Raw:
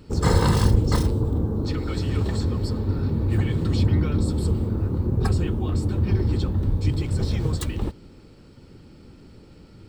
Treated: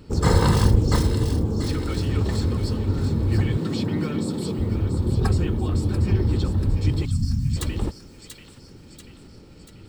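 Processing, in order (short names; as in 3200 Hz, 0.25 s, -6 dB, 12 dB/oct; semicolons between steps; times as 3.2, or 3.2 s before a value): 3.57–4.58 HPF 140 Hz 24 dB/oct; 7.05–7.56 spectral delete 280–4300 Hz; thin delay 0.687 s, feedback 53%, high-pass 2000 Hz, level -7 dB; gain +1 dB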